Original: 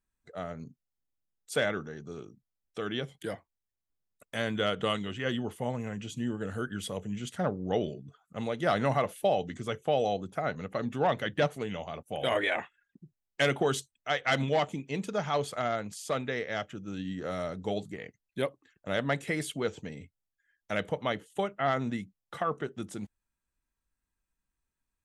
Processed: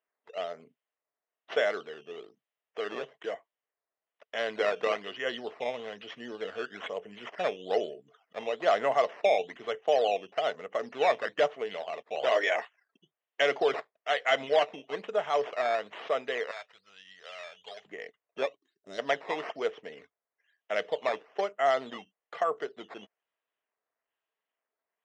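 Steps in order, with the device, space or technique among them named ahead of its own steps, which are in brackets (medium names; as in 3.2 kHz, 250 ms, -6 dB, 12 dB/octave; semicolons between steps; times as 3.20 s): circuit-bent sampling toy (decimation with a swept rate 10×, swing 100% 1.1 Hz; cabinet simulation 420–5100 Hz, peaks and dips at 440 Hz +8 dB, 660 Hz +9 dB, 1.1 kHz +4 dB, 1.9 kHz +6 dB, 3 kHz +8 dB, 4.5 kHz -8 dB); 16.51–17.85 s: amplifier tone stack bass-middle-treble 10-0-10; 18.57–18.99 s: time-frequency box 430–3600 Hz -17 dB; trim -3 dB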